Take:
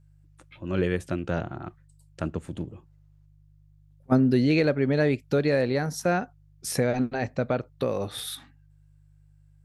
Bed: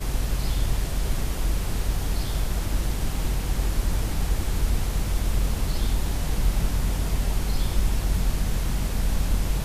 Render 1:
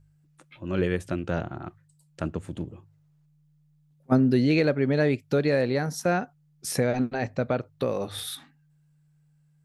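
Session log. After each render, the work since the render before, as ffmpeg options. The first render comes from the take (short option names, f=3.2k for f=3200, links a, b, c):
-af "bandreject=f=50:t=h:w=4,bandreject=f=100:t=h:w=4"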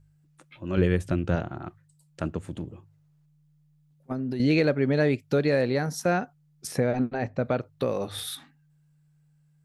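-filter_complex "[0:a]asettb=1/sr,asplit=3[a][b][c];[a]atrim=end=0.774[d];[b]atrim=start=0.77:end=1.36,asetpts=PTS-STARTPTS,afade=t=in:d=0.004:c=qsin,afade=t=out:st=0.586:d=0.004:c=qsin,lowshelf=f=170:g=9[e];[c]atrim=start=1.356[f];[d][e]acrossfade=d=0.004:c1=hsin:c2=qsin[g];[g][f]acrossfade=d=0.004:c1=qsin:c2=hsin,asettb=1/sr,asplit=3[h][i][j];[h]atrim=end=2.444[k];[i]atrim=start=2.44:end=4.4,asetpts=PTS-STARTPTS,afade=t=in:d=0.004:c=qsin,afade=t=out:st=1.956:d=0.004:c=qsin,acompressor=threshold=-27dB:ratio=6:attack=3.2:release=140:knee=1:detection=peak[l];[j]atrim=start=4.396[m];[k][l]acrossfade=d=0.004:c1=hsin:c2=qsin[n];[n][m]acrossfade=d=0.004:c1=qsin:c2=hsin,asettb=1/sr,asplit=3[o][p][q];[o]atrim=end=6.674[r];[p]atrim=start=6.67:end=7.45,asetpts=PTS-STARTPTS,afade=t=in:d=0.004:c=qsin,afade=t=out:st=0.776:d=0.004:c=qsin,highshelf=f=3k:g=-9.5[s];[q]atrim=start=7.446[t];[r][s]acrossfade=d=0.004:c1=hsin:c2=qsin[u];[u][t]acrossfade=d=0.004:c1=qsin:c2=hsin"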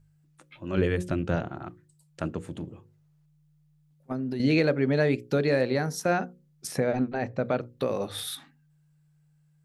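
-af "equalizer=f=68:t=o:w=1:g=-5.5,bandreject=f=60:t=h:w=6,bandreject=f=120:t=h:w=6,bandreject=f=180:t=h:w=6,bandreject=f=240:t=h:w=6,bandreject=f=300:t=h:w=6,bandreject=f=360:t=h:w=6,bandreject=f=420:t=h:w=6,bandreject=f=480:t=h:w=6,bandreject=f=540:t=h:w=6"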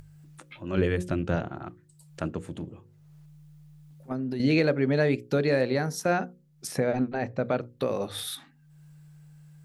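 -af "acompressor=mode=upward:threshold=-40dB:ratio=2.5"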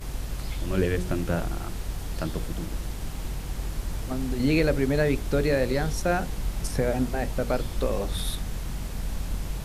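-filter_complex "[1:a]volume=-7dB[a];[0:a][a]amix=inputs=2:normalize=0"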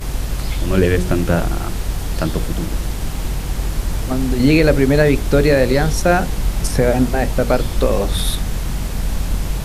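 -af "volume=10.5dB,alimiter=limit=-2dB:level=0:latency=1"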